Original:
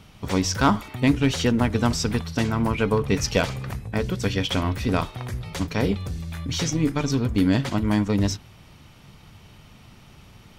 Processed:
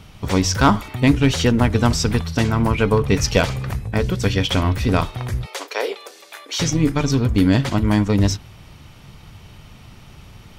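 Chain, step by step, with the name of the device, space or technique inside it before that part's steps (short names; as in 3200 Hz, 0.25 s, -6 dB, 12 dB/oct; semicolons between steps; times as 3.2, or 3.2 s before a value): low shelf boost with a cut just above (low shelf 110 Hz +4.5 dB; bell 220 Hz -2 dB); 5.46–6.6 steep high-pass 400 Hz 36 dB/oct; gain +4.5 dB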